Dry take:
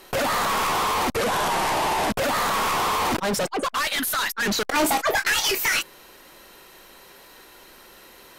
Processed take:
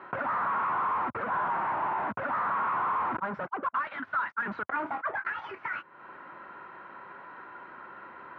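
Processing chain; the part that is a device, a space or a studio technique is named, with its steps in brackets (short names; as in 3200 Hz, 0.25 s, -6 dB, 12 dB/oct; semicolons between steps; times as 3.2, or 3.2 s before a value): bass amplifier (compressor 4:1, threshold -37 dBFS, peak gain reduction 15 dB; speaker cabinet 87–2000 Hz, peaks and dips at 450 Hz -5 dB, 1000 Hz +8 dB, 1400 Hz +10 dB)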